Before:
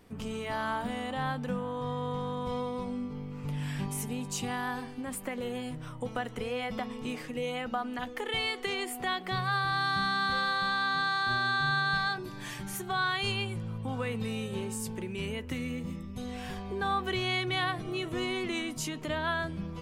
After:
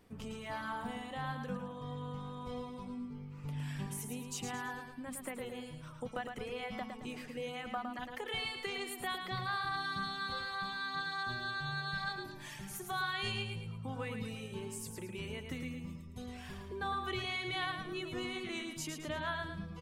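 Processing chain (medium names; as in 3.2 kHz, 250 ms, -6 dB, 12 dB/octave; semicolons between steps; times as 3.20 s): reverb removal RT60 1 s; feedback delay 110 ms, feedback 40%, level -6 dB; trim -6 dB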